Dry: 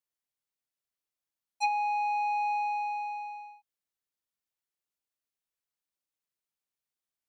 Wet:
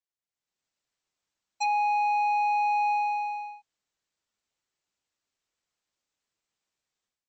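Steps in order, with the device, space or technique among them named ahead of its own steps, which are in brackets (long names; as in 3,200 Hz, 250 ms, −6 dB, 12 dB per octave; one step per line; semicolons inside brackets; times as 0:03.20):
low-bitrate web radio (automatic gain control gain up to 14.5 dB; brickwall limiter −14.5 dBFS, peak gain reduction 9.5 dB; level −6 dB; MP3 32 kbit/s 22,050 Hz)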